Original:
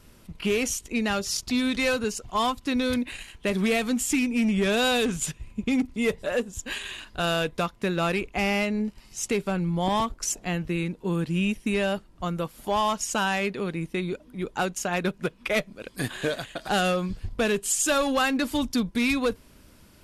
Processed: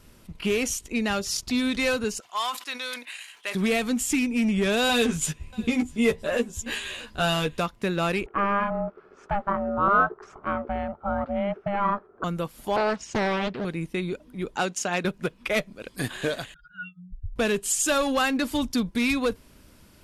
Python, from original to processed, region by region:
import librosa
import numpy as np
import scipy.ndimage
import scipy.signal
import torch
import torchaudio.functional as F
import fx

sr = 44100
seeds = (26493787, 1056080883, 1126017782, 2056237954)

y = fx.chain(x, sr, fx.highpass(hz=1000.0, slope=12),
    fx.sustainer(db_per_s=130.0), at=(2.2, 3.55))
y = fx.chain(y, sr, fx.doubler(ms=13.0, db=-3.0),
    fx.echo_single(ms=645, db=-23.5), at=(4.88, 7.6))
y = fx.chain(y, sr, fx.ring_mod(carrier_hz=400.0),
    fx.lowpass_res(hz=1300.0, q=5.3), at=(8.26, 12.24))
y = fx.chain(y, sr, fx.highpass(hz=48.0, slope=24),
    fx.air_absorb(metres=140.0),
    fx.doppler_dist(depth_ms=0.72), at=(12.76, 13.65))
y = fx.chain(y, sr, fx.bandpass_edges(low_hz=150.0, high_hz=7000.0),
    fx.high_shelf(hz=4300.0, db=7.0), at=(14.56, 15.05))
y = fx.chain(y, sr, fx.spec_expand(power=3.7),
    fx.brickwall_bandstop(low_hz=160.0, high_hz=1300.0), at=(16.54, 17.36))